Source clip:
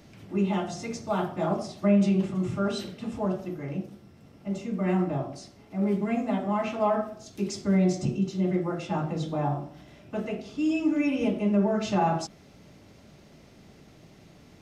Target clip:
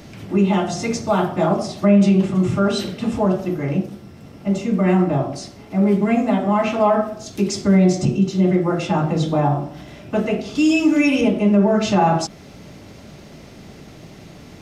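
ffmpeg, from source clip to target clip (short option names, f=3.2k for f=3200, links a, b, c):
-filter_complex "[0:a]asettb=1/sr,asplit=3[a][b][c];[a]atrim=end=10.554[d];[b]atrim=start=10.55:end=11.21,asetpts=PTS-STARTPTS,afade=t=in:d=0.004:c=qsin,afade=t=out:st=0.656:d=0.004:c=qsin,highshelf=f=2.6k:g=10[e];[c]atrim=start=11.206[f];[d][e]acrossfade=d=0.004:c1=hsin:c2=qsin[g];[g][f]acrossfade=d=0.004:c1=qsin:c2=hsin,asplit=2[h][i];[i]alimiter=limit=-23dB:level=0:latency=1:release=299,volume=3dB[j];[h][j]amix=inputs=2:normalize=0,volume=4.5dB"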